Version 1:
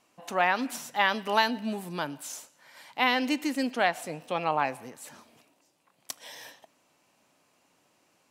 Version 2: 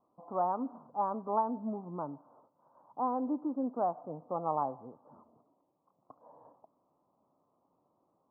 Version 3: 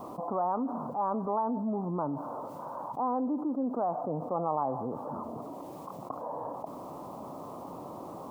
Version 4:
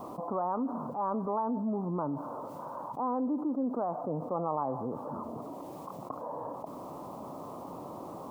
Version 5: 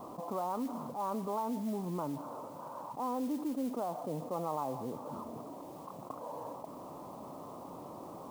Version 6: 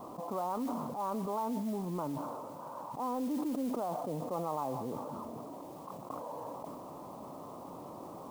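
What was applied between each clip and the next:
Butterworth low-pass 1,200 Hz 72 dB per octave; level −4.5 dB
envelope flattener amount 70%; level −2 dB
dynamic equaliser 750 Hz, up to −4 dB, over −45 dBFS, Q 3.2
noise that follows the level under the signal 21 dB; level −4 dB
level that may fall only so fast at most 24 dB per second

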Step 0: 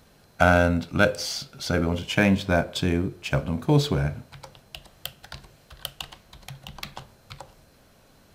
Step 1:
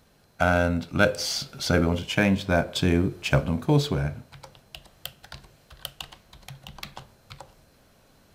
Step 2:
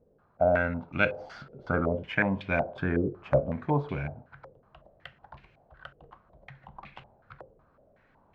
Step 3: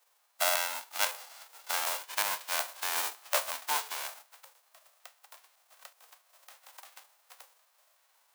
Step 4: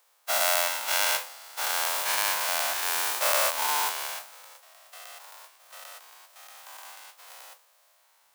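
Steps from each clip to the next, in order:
speech leveller within 4 dB 0.5 s
low-pass on a step sequencer 5.4 Hz 480–2,400 Hz; level −7.5 dB
spectral envelope flattened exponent 0.1; high-pass with resonance 810 Hz, resonance Q 2; level −5.5 dB
every bin's largest magnitude spread in time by 240 ms; level −1 dB

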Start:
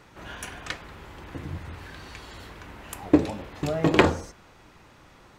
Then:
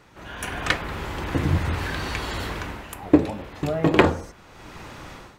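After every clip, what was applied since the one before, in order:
dynamic equaliser 6,100 Hz, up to −6 dB, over −51 dBFS, Q 0.82
automatic gain control gain up to 15 dB
level −1 dB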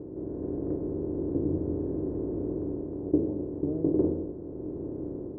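compressor on every frequency bin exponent 0.4
transistor ladder low-pass 480 Hz, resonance 45%
level −7 dB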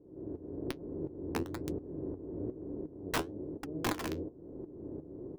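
wrap-around overflow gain 19.5 dB
shaped tremolo saw up 2.8 Hz, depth 85%
flanger 1.1 Hz, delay 3.5 ms, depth 9.8 ms, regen +59%

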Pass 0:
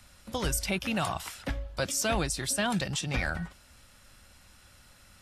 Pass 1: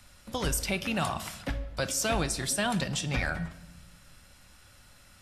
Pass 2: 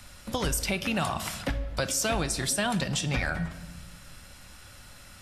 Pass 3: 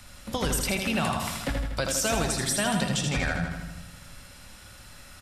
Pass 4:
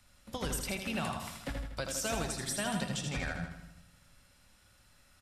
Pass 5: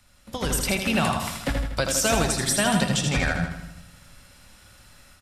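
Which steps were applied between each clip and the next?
rectangular room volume 420 cubic metres, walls mixed, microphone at 0.34 metres
downward compressor 2 to 1, threshold −36 dBFS, peak gain reduction 7 dB; level +7 dB
repeating echo 80 ms, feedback 57%, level −5.5 dB
expander for the loud parts 1.5 to 1, over −41 dBFS; level −7 dB
automatic gain control gain up to 7.5 dB; level +5 dB

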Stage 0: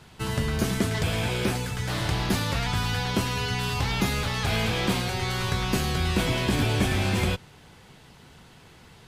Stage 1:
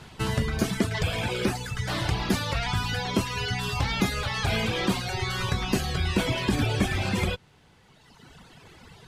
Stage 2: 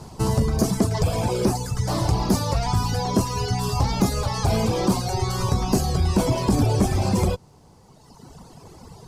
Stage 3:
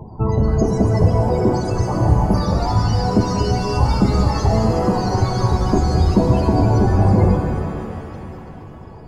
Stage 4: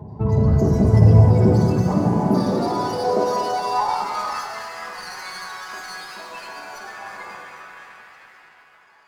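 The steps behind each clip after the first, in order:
reverb reduction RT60 1.8 s; high-shelf EQ 11,000 Hz −7.5 dB; in parallel at −2 dB: downward compressor, threshold −34 dBFS, peak gain reduction 13 dB
flat-topped bell 2,300 Hz −14.5 dB; in parallel at −6 dB: sine wavefolder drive 6 dB, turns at −11.5 dBFS; on the sum: level −1 dB
phase shifter 0.97 Hz, delay 3.4 ms, feedback 26%; spectral peaks only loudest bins 32; reverb with rising layers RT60 3.2 s, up +7 semitones, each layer −8 dB, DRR 2.5 dB; level +3 dB
high-pass filter sweep 85 Hz → 1,700 Hz, 0:00.96–0:04.69; rectangular room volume 730 cubic metres, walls mixed, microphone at 1.3 metres; windowed peak hold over 3 samples; level −5 dB

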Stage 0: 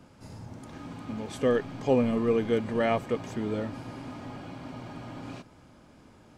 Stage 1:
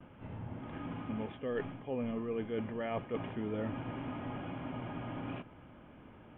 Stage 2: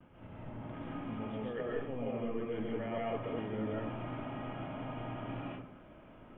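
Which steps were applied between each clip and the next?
Butterworth low-pass 3,300 Hz 96 dB per octave; noise gate with hold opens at −51 dBFS; reversed playback; downward compressor 12 to 1, threshold −33 dBFS, peak gain reduction 15.5 dB; reversed playback
comb and all-pass reverb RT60 0.63 s, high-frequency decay 0.45×, pre-delay 95 ms, DRR −5 dB; level −5.5 dB

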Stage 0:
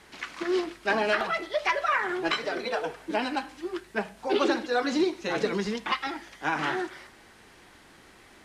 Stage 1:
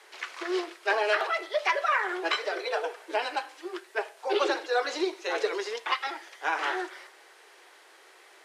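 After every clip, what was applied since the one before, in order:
Butterworth high-pass 370 Hz 48 dB per octave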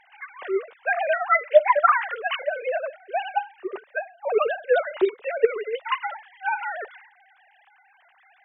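three sine waves on the formant tracks
level +5.5 dB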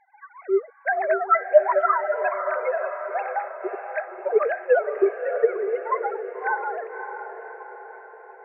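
three sine waves on the formant tracks
feedback delay with all-pass diffusion 582 ms, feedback 55%, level −8.5 dB

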